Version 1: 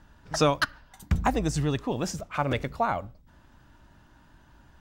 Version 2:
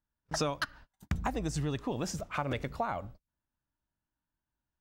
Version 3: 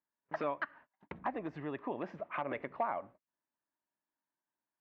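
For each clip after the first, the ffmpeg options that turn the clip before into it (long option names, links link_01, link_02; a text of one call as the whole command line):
ffmpeg -i in.wav -af "agate=range=-33dB:threshold=-45dB:ratio=16:detection=peak,acompressor=threshold=-30dB:ratio=3,volume=-1dB" out.wav
ffmpeg -i in.wav -af "aeval=exprs='0.0631*(abs(mod(val(0)/0.0631+3,4)-2)-1)':channel_layout=same,highpass=410,equalizer=frequency=480:width_type=q:width=4:gain=-6,equalizer=frequency=790:width_type=q:width=4:gain=-4,equalizer=frequency=1400:width_type=q:width=4:gain=-8,lowpass=frequency=2000:width=0.5412,lowpass=frequency=2000:width=1.3066,volume=3dB" out.wav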